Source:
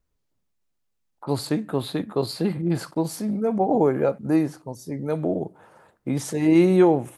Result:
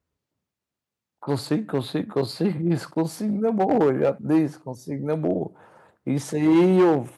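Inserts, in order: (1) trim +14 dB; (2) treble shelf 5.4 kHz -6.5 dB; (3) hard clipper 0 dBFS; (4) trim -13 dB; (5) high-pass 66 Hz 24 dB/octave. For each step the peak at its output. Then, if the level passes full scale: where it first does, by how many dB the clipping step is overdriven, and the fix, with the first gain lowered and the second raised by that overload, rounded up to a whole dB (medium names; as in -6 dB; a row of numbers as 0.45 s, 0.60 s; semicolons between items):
+7.5 dBFS, +7.5 dBFS, 0.0 dBFS, -13.0 dBFS, -9.0 dBFS; step 1, 7.5 dB; step 1 +6 dB, step 4 -5 dB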